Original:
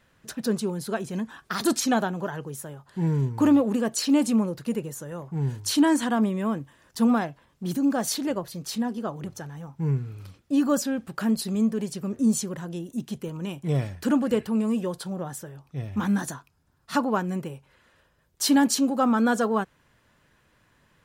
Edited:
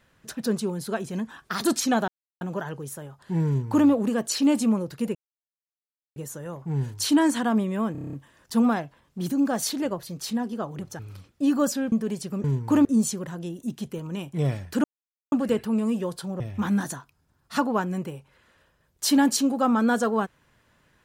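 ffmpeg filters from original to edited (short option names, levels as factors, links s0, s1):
-filter_complex "[0:a]asplit=16[s0][s1][s2][s3][s4][s5][s6][s7][s8][s9][s10][s11][s12][s13][s14][s15];[s0]atrim=end=2.08,asetpts=PTS-STARTPTS,afade=t=out:st=2.076:d=0.004:c=hsin,apad=pad_dur=0.33[s16];[s1]atrim=start=2.08:end=4.82,asetpts=PTS-STARTPTS,afade=t=in:d=0.004:c=hsin,afade=t=out:st=2.736:d=0.004:c=hsin,apad=pad_dur=1.01[s17];[s2]atrim=start=4.82:end=6.612,asetpts=PTS-STARTPTS,afade=t=in:d=0.004:c=hsin[s18];[s3]atrim=start=6.578:end=6.612[s19];[s4]atrim=start=6.578:end=6.612[s20];[s5]atrim=start=6.578:end=6.612[s21];[s6]atrim=start=6.578:end=6.612[s22];[s7]atrim=start=6.578:end=6.612[s23];[s8]atrim=start=6.578:end=6.612[s24];[s9]atrim=start=6.578:end=9.442[s25];[s10]atrim=start=10.088:end=11.022[s26];[s11]atrim=start=11.628:end=12.152[s27];[s12]atrim=start=3.138:end=3.552[s28];[s13]atrim=start=12.148:end=14.14,asetpts=PTS-STARTPTS,afade=t=out:st=1.988:d=0.004:c=hsin,apad=pad_dur=0.48[s29];[s14]atrim=start=14.14:end=15.222,asetpts=PTS-STARTPTS,afade=t=in:d=0.004:c=hsin[s30];[s15]atrim=start=15.778[s31];[s16][s17][s18]concat=n=3:v=0:a=1[s32];[s32][s19]acrossfade=d=0.004:c1=hsin:c2=hsin[s33];[s33][s20]acrossfade=d=0.004:c1=hsin:c2=hsin[s34];[s34][s21]acrossfade=d=0.004:c1=hsin:c2=hsin[s35];[s35][s22]acrossfade=d=0.004:c1=hsin:c2=hsin[s36];[s36][s23]acrossfade=d=0.004:c1=hsin:c2=hsin[s37];[s37][s24]acrossfade=d=0.004:c1=hsin:c2=hsin[s38];[s38][s25]acrossfade=d=0.004:c1=hsin:c2=hsin[s39];[s39][s26]acrossfade=d=0.004:c1=hsin:c2=hsin[s40];[s40][s27]acrossfade=d=0.004:c1=hsin:c2=hsin[s41];[s41][s28]acrossfade=d=0.004:c1=hsin:c2=hsin[s42];[s29][s30]concat=n=2:v=0:a=1[s43];[s42][s43]acrossfade=d=0.004:c1=hsin:c2=hsin[s44];[s44][s31]acrossfade=d=0.004:c1=hsin:c2=hsin"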